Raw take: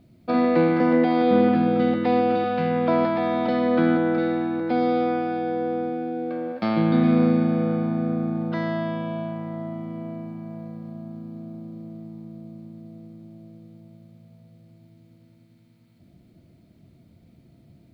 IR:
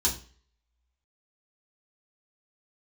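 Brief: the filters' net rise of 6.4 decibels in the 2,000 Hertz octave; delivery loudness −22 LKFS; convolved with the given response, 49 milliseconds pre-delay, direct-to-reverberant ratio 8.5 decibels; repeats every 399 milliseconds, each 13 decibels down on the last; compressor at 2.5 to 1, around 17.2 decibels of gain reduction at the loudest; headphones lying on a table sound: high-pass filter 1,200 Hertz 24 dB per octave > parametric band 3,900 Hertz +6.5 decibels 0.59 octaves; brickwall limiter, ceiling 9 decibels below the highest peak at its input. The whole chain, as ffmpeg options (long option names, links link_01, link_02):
-filter_complex "[0:a]equalizer=frequency=2000:width_type=o:gain=8,acompressor=threshold=-42dB:ratio=2.5,alimiter=level_in=6.5dB:limit=-24dB:level=0:latency=1,volume=-6.5dB,aecho=1:1:399|798|1197:0.224|0.0493|0.0108,asplit=2[link_01][link_02];[1:a]atrim=start_sample=2205,adelay=49[link_03];[link_02][link_03]afir=irnorm=-1:irlink=0,volume=-16.5dB[link_04];[link_01][link_04]amix=inputs=2:normalize=0,highpass=frequency=1200:width=0.5412,highpass=frequency=1200:width=1.3066,equalizer=frequency=3900:width_type=o:width=0.59:gain=6.5,volume=26.5dB"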